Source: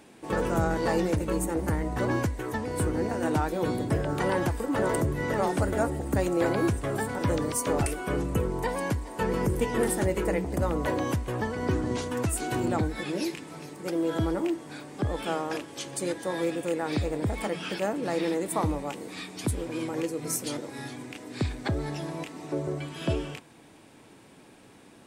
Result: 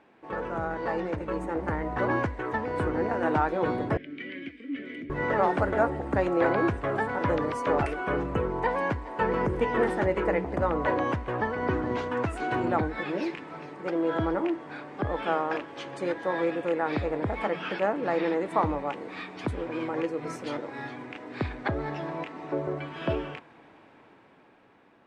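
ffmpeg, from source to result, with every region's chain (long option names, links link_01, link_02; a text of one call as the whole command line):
ffmpeg -i in.wav -filter_complex "[0:a]asettb=1/sr,asplit=3[link_01][link_02][link_03];[link_01]atrim=end=3.974[link_04];[link_02]atrim=start=3.97:end=5.1,asetpts=PTS-STARTPTS,afade=type=in:duration=0.004:curve=qsin,afade=type=out:start_time=1.126:duration=0.004:curve=qsin,asplit=3[link_05][link_06][link_07];[link_05]bandpass=frequency=270:width_type=q:width=8,volume=0dB[link_08];[link_06]bandpass=frequency=2290:width_type=q:width=8,volume=-6dB[link_09];[link_07]bandpass=frequency=3010:width_type=q:width=8,volume=-9dB[link_10];[link_08][link_09][link_10]amix=inputs=3:normalize=0,highshelf=frequency=1700:width_type=q:width=1.5:gain=7.5[link_11];[link_03]atrim=start=5.096[link_12];[link_04][link_11]acrossfade=duration=0.004:curve1=hsin:curve2=qsin[link_13];[link_13][link_12]acrossfade=duration=0.004:curve1=qsin:curve2=hsin,lowpass=1800,lowshelf=frequency=450:gain=-12,dynaudnorm=framelen=260:gausssize=11:maxgain=7.5dB" out.wav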